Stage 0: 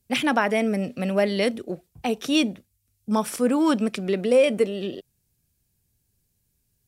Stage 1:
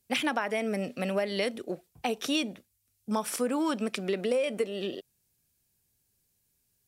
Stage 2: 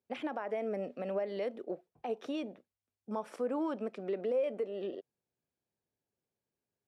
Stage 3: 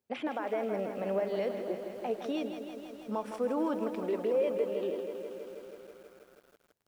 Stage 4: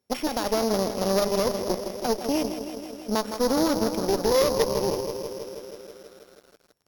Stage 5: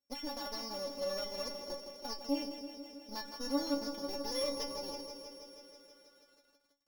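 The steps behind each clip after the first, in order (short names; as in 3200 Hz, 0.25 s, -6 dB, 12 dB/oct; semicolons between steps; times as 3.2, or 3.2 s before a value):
low shelf 230 Hz -11 dB; compressor 6:1, threshold -25 dBFS, peak gain reduction 9.5 dB
limiter -21 dBFS, peak gain reduction 6.5 dB; band-pass 550 Hz, Q 0.93; gain -2 dB
lo-fi delay 0.161 s, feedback 80%, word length 10-bit, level -8.5 dB; gain +2.5 dB
sample sorter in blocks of 8 samples; added harmonics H 2 -7 dB, 4 -8 dB, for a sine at -19.5 dBFS; gain +7 dB
metallic resonator 280 Hz, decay 0.22 s, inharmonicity 0.002; gain -1.5 dB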